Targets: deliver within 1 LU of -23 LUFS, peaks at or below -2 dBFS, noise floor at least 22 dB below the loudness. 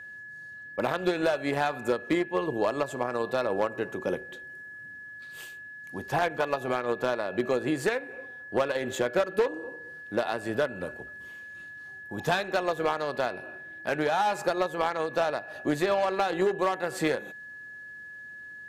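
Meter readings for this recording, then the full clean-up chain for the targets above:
clipped 0.3%; flat tops at -17.0 dBFS; steady tone 1700 Hz; tone level -41 dBFS; loudness -29.0 LUFS; peak -17.0 dBFS; loudness target -23.0 LUFS
-> clip repair -17 dBFS; notch 1700 Hz, Q 30; gain +6 dB

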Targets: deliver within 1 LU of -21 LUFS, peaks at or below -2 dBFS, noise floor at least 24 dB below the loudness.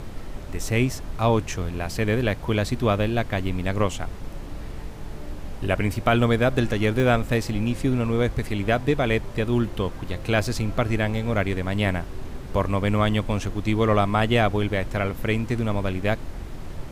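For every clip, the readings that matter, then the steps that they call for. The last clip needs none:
dropouts 1; longest dropout 1.2 ms; noise floor -35 dBFS; noise floor target -48 dBFS; loudness -24.0 LUFS; peak -7.0 dBFS; loudness target -21.0 LUFS
-> interpolate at 7, 1.2 ms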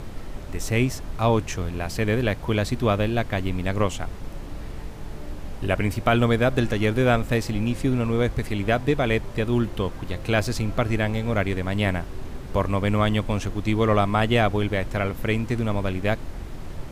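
dropouts 0; noise floor -35 dBFS; noise floor target -48 dBFS
-> noise print and reduce 13 dB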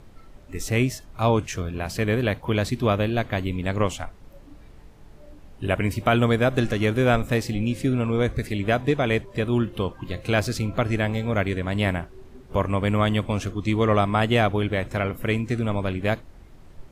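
noise floor -47 dBFS; noise floor target -48 dBFS
-> noise print and reduce 6 dB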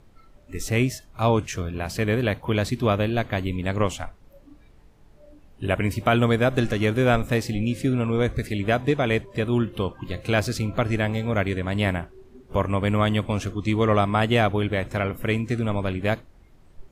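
noise floor -53 dBFS; loudness -24.0 LUFS; peak -7.5 dBFS; loudness target -21.0 LUFS
-> gain +3 dB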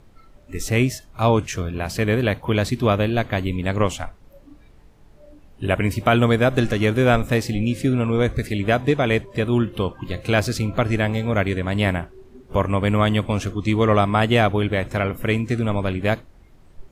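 loudness -21.0 LUFS; peak -4.5 dBFS; noise floor -50 dBFS

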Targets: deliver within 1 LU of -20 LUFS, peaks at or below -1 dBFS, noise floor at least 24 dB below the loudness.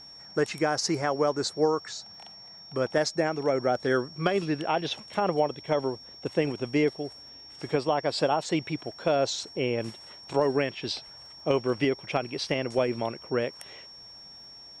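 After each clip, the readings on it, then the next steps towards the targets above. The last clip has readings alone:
ticks 35/s; steady tone 5500 Hz; tone level -45 dBFS; loudness -28.5 LUFS; peak -11.0 dBFS; loudness target -20.0 LUFS
-> de-click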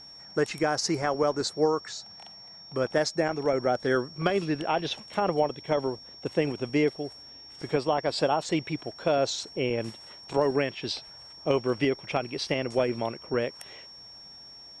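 ticks 0.14/s; steady tone 5500 Hz; tone level -45 dBFS
-> notch 5500 Hz, Q 30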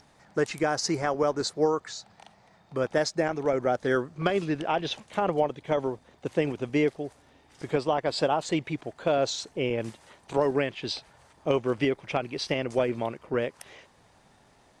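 steady tone none; loudness -28.5 LUFS; peak -11.0 dBFS; loudness target -20.0 LUFS
-> gain +8.5 dB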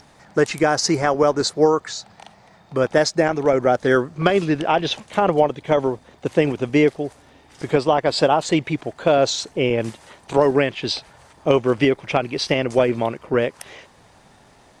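loudness -20.0 LUFS; peak -2.5 dBFS; noise floor -52 dBFS

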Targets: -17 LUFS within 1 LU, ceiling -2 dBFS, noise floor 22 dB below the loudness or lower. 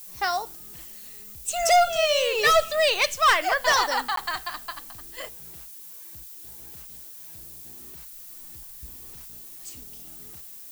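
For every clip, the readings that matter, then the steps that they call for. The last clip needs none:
dropouts 1; longest dropout 13 ms; noise floor -43 dBFS; noise floor target -44 dBFS; loudness -22.0 LUFS; peak -12.5 dBFS; loudness target -17.0 LUFS
-> interpolate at 4.16, 13 ms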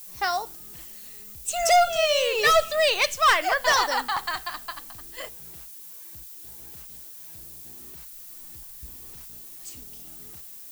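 dropouts 0; noise floor -43 dBFS; noise floor target -44 dBFS
-> noise print and reduce 6 dB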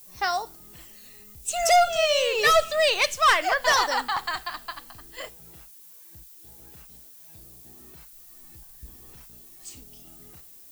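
noise floor -49 dBFS; loudness -22.0 LUFS; peak -13.0 dBFS; loudness target -17.0 LUFS
-> gain +5 dB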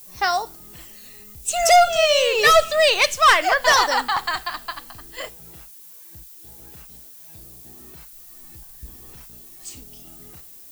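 loudness -17.0 LUFS; peak -8.0 dBFS; noise floor -44 dBFS

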